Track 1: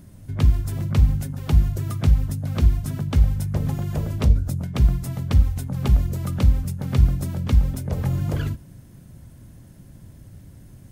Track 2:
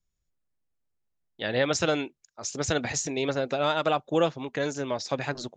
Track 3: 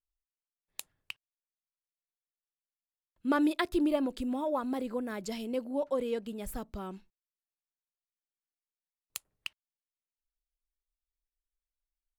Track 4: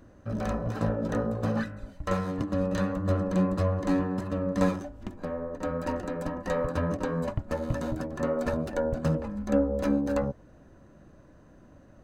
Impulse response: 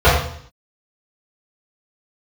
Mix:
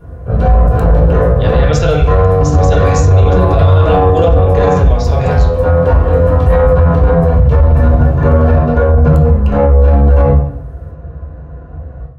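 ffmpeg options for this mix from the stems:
-filter_complex "[0:a]acompressor=threshold=-20dB:ratio=6,volume=-13dB,asplit=2[a][b];[b]volume=-14dB[c];[1:a]volume=3dB,asplit=2[d][e];[e]volume=-22.5dB[f];[2:a]volume=-3.5dB,asplit=2[g][h];[h]volume=-21dB[i];[3:a]aeval=exprs='(tanh(11.2*val(0)+0.55)-tanh(0.55))/11.2':c=same,adynamicsmooth=sensitivity=3.5:basefreq=3.3k,volume=-1dB,asplit=2[j][k];[k]volume=-7dB[l];[4:a]atrim=start_sample=2205[m];[c][f][i][l]amix=inputs=4:normalize=0[n];[n][m]afir=irnorm=-1:irlink=0[o];[a][d][g][j][o]amix=inputs=5:normalize=0,alimiter=limit=-1dB:level=0:latency=1:release=33"

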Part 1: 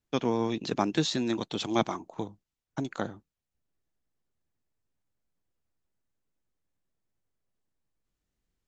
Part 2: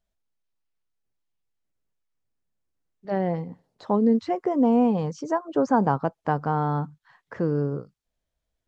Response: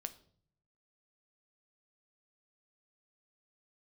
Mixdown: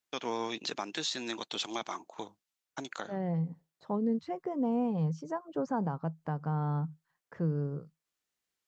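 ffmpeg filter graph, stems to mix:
-filter_complex "[0:a]highpass=f=1.2k:p=1,volume=3dB[a];[1:a]agate=range=-33dB:threshold=-46dB:ratio=3:detection=peak,equalizer=f=160:t=o:w=0.24:g=13.5,volume=-11dB[b];[a][b]amix=inputs=2:normalize=0,alimiter=limit=-22dB:level=0:latency=1:release=176"

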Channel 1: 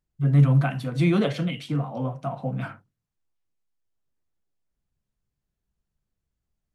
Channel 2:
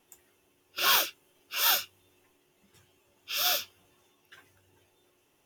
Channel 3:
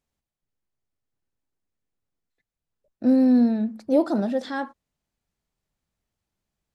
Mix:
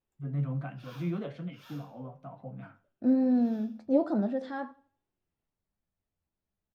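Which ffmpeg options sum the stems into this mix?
-filter_complex "[0:a]volume=-9dB,asplit=2[a][b];[b]volume=-22dB[c];[1:a]volume=-19dB,asplit=2[d][e];[e]volume=-7dB[f];[2:a]volume=-1.5dB,asplit=3[g][h][i];[h]volume=-21dB[j];[i]apad=whole_len=240636[k];[d][k]sidechaincompress=threshold=-25dB:ratio=8:attack=16:release=663[l];[c][f][j]amix=inputs=3:normalize=0,aecho=0:1:83|166|249|332|415:1|0.33|0.109|0.0359|0.0119[m];[a][l][g][m]amix=inputs=4:normalize=0,lowpass=f=1.5k:p=1,flanger=delay=9.2:depth=3.4:regen=55:speed=1.2:shape=triangular"

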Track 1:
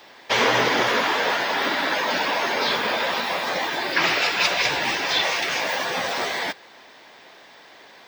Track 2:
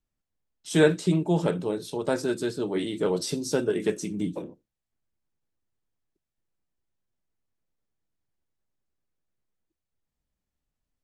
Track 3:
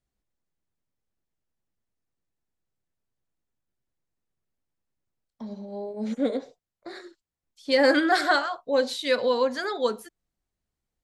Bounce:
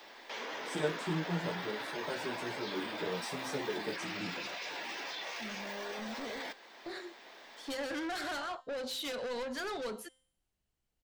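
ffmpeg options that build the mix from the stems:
-filter_complex "[0:a]highpass=f=200:w=0.5412,highpass=f=200:w=1.3066,alimiter=limit=-17dB:level=0:latency=1:release=104,volume=-5.5dB[a];[1:a]asplit=2[b][c];[c]adelay=11.4,afreqshift=1.1[d];[b][d]amix=inputs=2:normalize=1,volume=-9.5dB[e];[2:a]equalizer=f=2.9k:t=o:w=0.33:g=6.5,acompressor=threshold=-25dB:ratio=6,asoftclip=type=tanh:threshold=-34dB,volume=-1dB,asplit=2[f][g];[g]apad=whole_len=356102[h];[a][h]sidechaincompress=threshold=-41dB:ratio=8:attack=16:release=1290[i];[i][f]amix=inputs=2:normalize=0,alimiter=level_in=9dB:limit=-24dB:level=0:latency=1:release=16,volume=-9dB,volume=0dB[j];[e][j]amix=inputs=2:normalize=0,bandreject=f=260.3:t=h:w=4,bandreject=f=520.6:t=h:w=4,bandreject=f=780.9:t=h:w=4,bandreject=f=1.0412k:t=h:w=4,bandreject=f=1.3015k:t=h:w=4,bandreject=f=1.5618k:t=h:w=4,bandreject=f=1.8221k:t=h:w=4,bandreject=f=2.0824k:t=h:w=4,bandreject=f=2.3427k:t=h:w=4,bandreject=f=2.603k:t=h:w=4,bandreject=f=2.8633k:t=h:w=4,bandreject=f=3.1236k:t=h:w=4,bandreject=f=3.3839k:t=h:w=4,bandreject=f=3.6442k:t=h:w=4,bandreject=f=3.9045k:t=h:w=4,bandreject=f=4.1648k:t=h:w=4,bandreject=f=4.4251k:t=h:w=4,bandreject=f=4.6854k:t=h:w=4,bandreject=f=4.9457k:t=h:w=4,bandreject=f=5.206k:t=h:w=4,bandreject=f=5.4663k:t=h:w=4,bandreject=f=5.7266k:t=h:w=4,bandreject=f=5.9869k:t=h:w=4,bandreject=f=6.2472k:t=h:w=4,bandreject=f=6.5075k:t=h:w=4,bandreject=f=6.7678k:t=h:w=4,bandreject=f=7.0281k:t=h:w=4,bandreject=f=7.2884k:t=h:w=4,bandreject=f=7.5487k:t=h:w=4,bandreject=f=7.809k:t=h:w=4,bandreject=f=8.0693k:t=h:w=4,bandreject=f=8.3296k:t=h:w=4,bandreject=f=8.5899k:t=h:w=4,bandreject=f=8.8502k:t=h:w=4,bandreject=f=9.1105k:t=h:w=4,bandreject=f=9.3708k:t=h:w=4,bandreject=f=9.6311k:t=h:w=4,bandreject=f=9.8914k:t=h:w=4,bandreject=f=10.1517k:t=h:w=4,bandreject=f=10.412k:t=h:w=4"

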